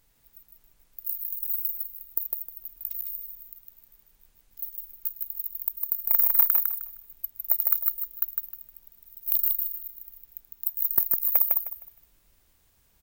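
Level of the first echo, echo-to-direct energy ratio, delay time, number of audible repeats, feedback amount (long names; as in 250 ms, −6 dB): −3.0 dB, −2.5 dB, 155 ms, 3, 26%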